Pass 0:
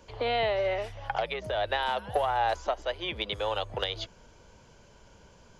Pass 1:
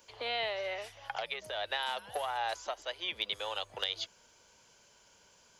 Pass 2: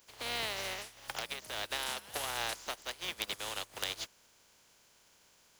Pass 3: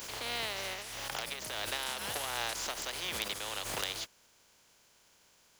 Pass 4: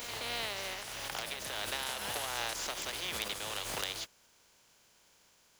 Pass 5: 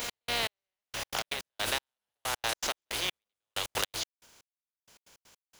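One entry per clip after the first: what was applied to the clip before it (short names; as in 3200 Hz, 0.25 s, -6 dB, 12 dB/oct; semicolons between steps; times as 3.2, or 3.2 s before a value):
tilt +3.5 dB/oct; gain -7 dB
spectral contrast lowered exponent 0.38; gain -2 dB
backwards sustainer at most 28 dB/s
reverse echo 0.271 s -9 dB; gain -1 dB
step gate "x..xx.....x.x." 160 bpm -60 dB; gain +6.5 dB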